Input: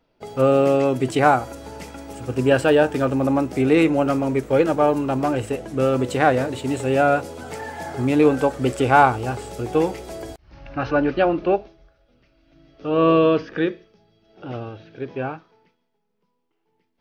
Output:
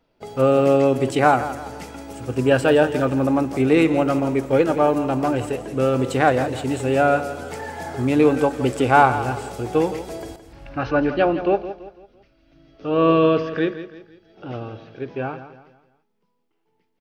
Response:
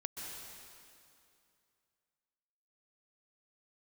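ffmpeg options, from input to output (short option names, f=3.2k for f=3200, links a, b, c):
-af "aecho=1:1:167|334|501|668:0.237|0.0925|0.0361|0.0141"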